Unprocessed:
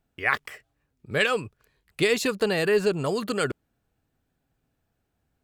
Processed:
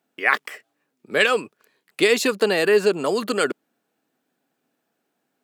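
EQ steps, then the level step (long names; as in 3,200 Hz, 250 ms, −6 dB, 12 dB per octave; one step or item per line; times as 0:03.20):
high-pass filter 220 Hz 24 dB per octave
+5.0 dB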